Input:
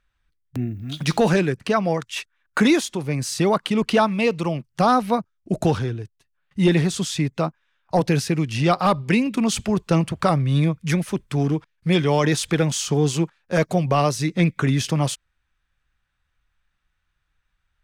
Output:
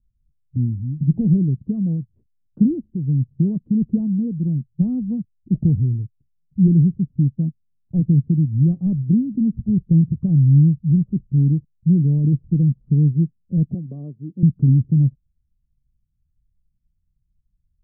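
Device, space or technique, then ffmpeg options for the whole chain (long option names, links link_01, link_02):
the neighbour's flat through the wall: -filter_complex "[0:a]asettb=1/sr,asplit=3[link_01][link_02][link_03];[link_01]atrim=end=13.744[link_04];[link_02]atrim=start=13.74:end=14.43,asetpts=PTS-STARTPTS,afade=type=in:duration=0.004:curve=qsin,afade=type=out:start_time=0.686:duration=0.004:curve=qsin,highpass=360[link_05];[link_03]atrim=start=14.426[link_06];[link_04][link_05]acrossfade=duration=0.004:curve1=hsin:curve2=qsin[link_07];[link_07][link_06]acrossfade=duration=0.004:curve1=qsin:curve2=hsin,lowpass=frequency=230:width=0.5412,lowpass=frequency=230:width=1.3066,equalizer=frequency=130:width_type=o:width=0.77:gain=3,volume=5dB"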